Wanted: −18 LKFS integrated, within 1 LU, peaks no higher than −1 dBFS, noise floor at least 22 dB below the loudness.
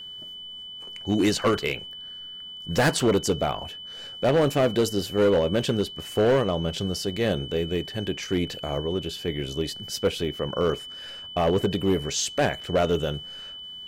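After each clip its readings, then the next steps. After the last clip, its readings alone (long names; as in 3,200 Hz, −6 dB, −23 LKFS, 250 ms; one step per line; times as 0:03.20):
share of clipped samples 1.6%; peaks flattened at −15.5 dBFS; interfering tone 3,000 Hz; level of the tone −37 dBFS; integrated loudness −25.5 LKFS; sample peak −15.5 dBFS; target loudness −18.0 LKFS
→ clipped peaks rebuilt −15.5 dBFS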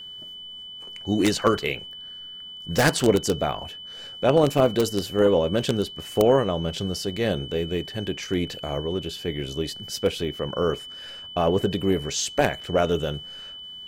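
share of clipped samples 0.0%; interfering tone 3,000 Hz; level of the tone −37 dBFS
→ notch filter 3,000 Hz, Q 30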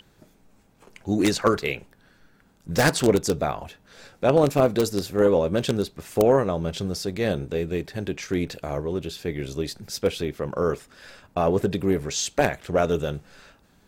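interfering tone none found; integrated loudness −24.5 LKFS; sample peak −6.0 dBFS; target loudness −18.0 LKFS
→ level +6.5 dB
brickwall limiter −1 dBFS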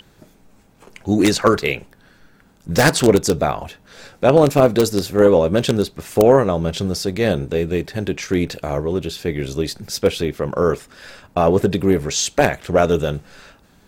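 integrated loudness −18.0 LKFS; sample peak −1.0 dBFS; background noise floor −53 dBFS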